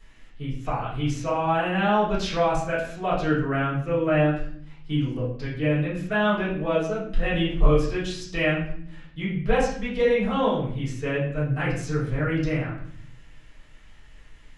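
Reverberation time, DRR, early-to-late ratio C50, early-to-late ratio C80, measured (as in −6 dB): 0.60 s, −10.0 dB, 4.5 dB, 8.0 dB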